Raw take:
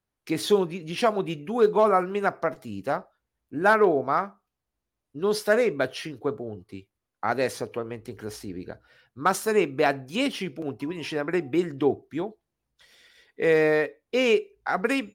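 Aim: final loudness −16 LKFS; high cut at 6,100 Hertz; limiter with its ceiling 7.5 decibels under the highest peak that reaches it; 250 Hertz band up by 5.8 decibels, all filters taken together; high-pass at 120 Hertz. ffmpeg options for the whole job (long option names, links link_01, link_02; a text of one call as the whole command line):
ffmpeg -i in.wav -af "highpass=120,lowpass=6100,equalizer=frequency=250:width_type=o:gain=8,volume=10.5dB,alimiter=limit=-4dB:level=0:latency=1" out.wav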